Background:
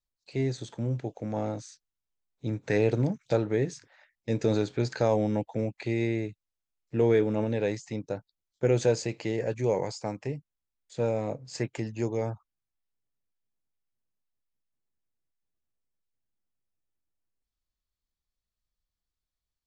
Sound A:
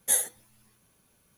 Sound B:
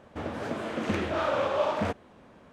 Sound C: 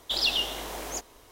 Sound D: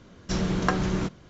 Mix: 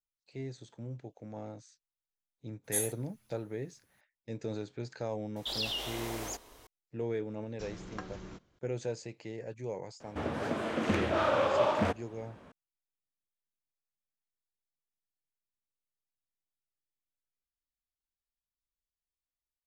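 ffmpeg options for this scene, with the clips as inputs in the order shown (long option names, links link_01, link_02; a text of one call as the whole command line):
ffmpeg -i bed.wav -i cue0.wav -i cue1.wav -i cue2.wav -i cue3.wav -filter_complex "[0:a]volume=-12dB[link_01];[3:a]acompressor=threshold=-33dB:ratio=2:attack=0.16:release=40:knee=1:detection=peak[link_02];[4:a]equalizer=frequency=160:width_type=o:width=0.77:gain=-5[link_03];[1:a]atrim=end=1.37,asetpts=PTS-STARTPTS,volume=-8.5dB,afade=type=in:duration=0.004:curve=hsin,afade=type=out:start_time=1.366:duration=0.004:curve=hsin,adelay=2640[link_04];[link_02]atrim=end=1.31,asetpts=PTS-STARTPTS,volume=-2dB,afade=type=in:duration=0.004:curve=hsin,afade=type=out:start_time=1.306:duration=0.004:curve=hsin,adelay=5360[link_05];[link_03]atrim=end=1.29,asetpts=PTS-STARTPTS,volume=-18dB,afade=type=in:duration=0.004:curve=hsin,afade=type=out:start_time=1.286:duration=0.004:curve=hsin,adelay=321930S[link_06];[2:a]atrim=end=2.52,asetpts=PTS-STARTPTS,volume=-0.5dB,afade=type=in:duration=0.004:curve=hsin,afade=type=out:start_time=2.516:duration=0.004:curve=hsin,adelay=10000[link_07];[link_01][link_04][link_05][link_06][link_07]amix=inputs=5:normalize=0" out.wav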